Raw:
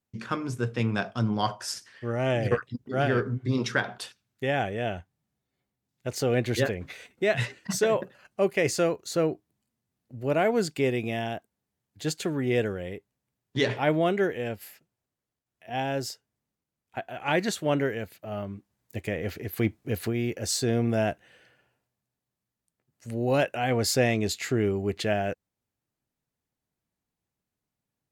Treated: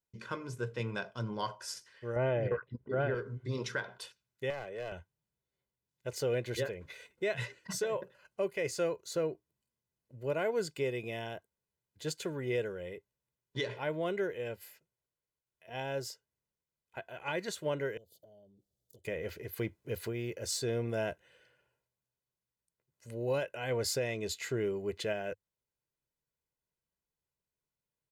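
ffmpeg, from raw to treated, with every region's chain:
-filter_complex "[0:a]asettb=1/sr,asplit=3[a][b][c];[a]atrim=end=2.164[d];[b]atrim=start=2.16:end=3.15,asetpts=PTS-STARTPTS,afade=t=in:d=0.004:c=qsin,afade=t=out:st=0.986:d=0.004:c=qsin,lowpass=1.8k,acontrast=68[e];[c]atrim=start=3.146[f];[d][e]acrossfade=d=0.004:c1=hsin:c2=qsin[g];[g][f]acrossfade=d=0.004:c1=qsin:c2=hsin,asettb=1/sr,asplit=3[h][i][j];[h]atrim=end=4.504[k];[i]atrim=start=4.5:end=4.92,asetpts=PTS-STARTPTS,afade=t=in:d=0.004:c=qsin,afade=t=out:st=0.416:d=0.004:c=qsin,acrossover=split=120|370|930|2600[l][m][n][o][p];[l]acompressor=threshold=-53dB:ratio=3[q];[m]acompressor=threshold=-47dB:ratio=3[r];[n]acompressor=threshold=-30dB:ratio=3[s];[o]acompressor=threshold=-37dB:ratio=3[t];[p]acompressor=threshold=-55dB:ratio=3[u];[q][r][s][t][u]amix=inputs=5:normalize=0,aeval=exprs='clip(val(0),-1,0.0299)':c=same[v];[j]atrim=start=4.916[w];[k][v]acrossfade=d=0.004:c1=hsin:c2=qsin[x];[x][w]acrossfade=d=0.004:c1=qsin:c2=hsin,asettb=1/sr,asplit=3[y][z][aa];[y]atrim=end=17.974[ab];[z]atrim=start=17.97:end=19.05,asetpts=PTS-STARTPTS,afade=t=in:d=0.004:c=qsin,afade=t=out:st=1.076:d=0.004:c=qsin,asuperstop=centerf=1600:order=20:qfactor=0.69,acompressor=threshold=-47dB:ratio=12:attack=3.2:release=140:knee=1:detection=peak[ac];[aa]atrim=start=19.046[ad];[ab][ac]acrossfade=d=0.004:c1=hsin:c2=qsin[ae];[ae][ad]acrossfade=d=0.004:c1=qsin:c2=hsin,equalizer=f=100:t=o:w=0.23:g=-11.5,aecho=1:1:2:0.55,alimiter=limit=-15dB:level=0:latency=1:release=335,volume=-8dB"

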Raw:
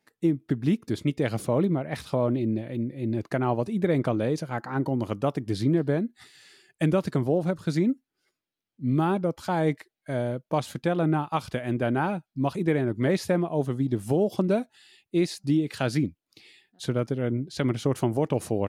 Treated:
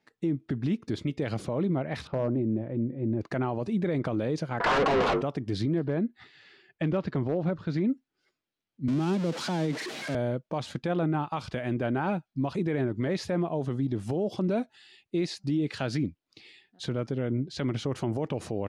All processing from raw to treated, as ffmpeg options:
-filter_complex "[0:a]asettb=1/sr,asplit=3[a][b][c];[a]atrim=end=2.074[d];[b]atrim=start=2.07:end=3.21,asetpts=PTS-STARTPTS,afade=t=in:d=0.004:c=qsin,afade=t=out:st=1.136:d=0.004:c=qsin,lowpass=1.2k,bandreject=f=50:t=h:w=6,bandreject=f=100:t=h:w=6,bandreject=f=150:t=h:w=6,bandreject=f=200:t=h:w=6,bandreject=f=250:t=h:w=6,asoftclip=type=hard:threshold=-16.5dB[e];[c]atrim=start=3.206[f];[d][e]acrossfade=d=0.004:c1=hsin:c2=qsin[g];[g][f]acrossfade=d=0.004:c1=qsin:c2=hsin,asettb=1/sr,asplit=3[h][i][j];[h]atrim=end=4.604[k];[i]atrim=start=4.6:end=5.22,asetpts=PTS-STARTPTS,afade=t=in:d=0.004:c=qsin,afade=t=out:st=0.616:d=0.004:c=qsin,bass=f=250:g=-10,treble=f=4k:g=-9,aeval=exprs='val(0)*sin(2*PI*150*n/s)':c=same,asplit=2[l][m];[m]highpass=f=720:p=1,volume=41dB,asoftclip=type=tanh:threshold=-16dB[n];[l][n]amix=inputs=2:normalize=0,lowpass=f=3.8k:p=1,volume=-6dB[o];[j]atrim=start=5.216[p];[k][o]acrossfade=d=0.004:c1=hsin:c2=qsin[q];[q][p]acrossfade=d=0.004:c1=qsin:c2=hsin,asettb=1/sr,asplit=3[r][s][t];[r]atrim=end=5.844[u];[s]atrim=start=5.84:end=7.87,asetpts=PTS-STARTPTS,afade=t=in:d=0.004:c=qsin,afade=t=out:st=2.026:d=0.004:c=qsin,lowpass=3.4k,asoftclip=type=hard:threshold=-15dB[v];[t]atrim=start=7.866[w];[u][v]acrossfade=d=0.004:c1=hsin:c2=qsin[x];[x][w]acrossfade=d=0.004:c1=qsin:c2=hsin,asettb=1/sr,asplit=3[y][z][aa];[y]atrim=end=8.884[ab];[z]atrim=start=8.88:end=10.15,asetpts=PTS-STARTPTS,afade=t=in:d=0.004:c=qsin,afade=t=out:st=1.266:d=0.004:c=qsin,aeval=exprs='val(0)+0.5*0.0376*sgn(val(0))':c=same,highpass=f=160:w=0.5412,highpass=f=160:w=1.3066,acrossover=split=340|3000[ac][ad][ae];[ad]acompressor=threshold=-38dB:ratio=2.5:attack=3.2:release=140:knee=2.83:detection=peak[af];[ac][af][ae]amix=inputs=3:normalize=0[ag];[aa]atrim=start=10.146[ah];[ab][ag]acrossfade=d=0.004:c1=hsin:c2=qsin[ai];[ai][ah]acrossfade=d=0.004:c1=qsin:c2=hsin,lowpass=5.6k,alimiter=limit=-21dB:level=0:latency=1:release=43,volume=1dB"

